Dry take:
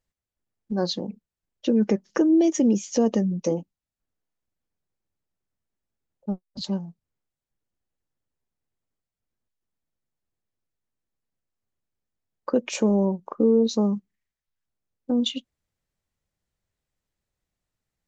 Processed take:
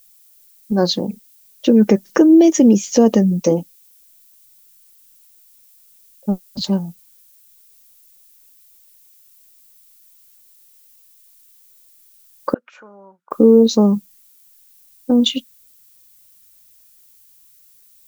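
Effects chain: added noise violet -60 dBFS; 12.54–13.31 band-pass 1400 Hz, Q 11; gain +9 dB

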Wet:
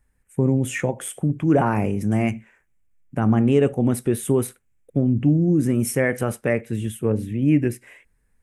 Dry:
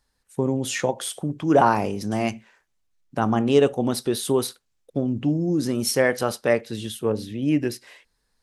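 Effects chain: in parallel at +1.5 dB: limiter -12.5 dBFS, peak gain reduction 7 dB; on the sum: EQ curve 120 Hz 0 dB, 1000 Hz -13 dB, 2300 Hz -5 dB, 4400 Hz -28 dB, 7800 Hz -9 dB; gain +2 dB

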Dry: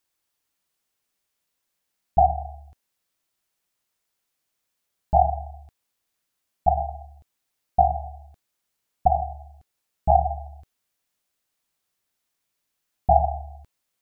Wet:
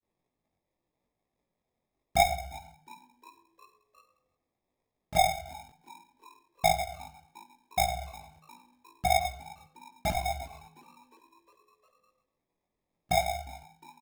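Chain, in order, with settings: half-wave gain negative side -3 dB; HPF 87 Hz; in parallel at +2 dB: compressor, threshold -25 dBFS, peak gain reduction 12 dB; on the sum: grains, spray 31 ms, pitch spread up and down by 0 st; sample-and-hold 30×; chorus voices 2, 0.82 Hz, delay 20 ms, depth 3.7 ms; frequency-shifting echo 0.356 s, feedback 63%, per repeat +89 Hz, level -23 dB; on a send at -18.5 dB: reverb RT60 0.40 s, pre-delay 81 ms; on the sum: gain -5 dB

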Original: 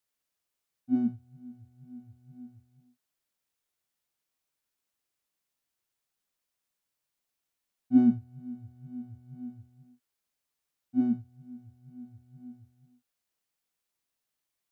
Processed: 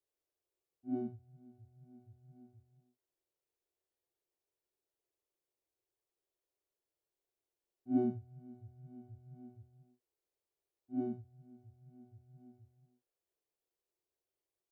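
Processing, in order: EQ curve 100 Hz 0 dB, 240 Hz -10 dB, 360 Hz +11 dB, 1300 Hz -8 dB; reverse echo 47 ms -10.5 dB; gain -4 dB

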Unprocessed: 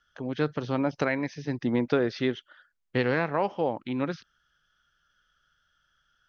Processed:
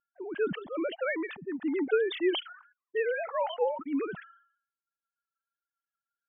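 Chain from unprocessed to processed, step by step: sine-wave speech; low-pass opened by the level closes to 440 Hz, open at -21.5 dBFS; reverb removal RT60 1.3 s; sustainer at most 100 dB/s; gain -2.5 dB

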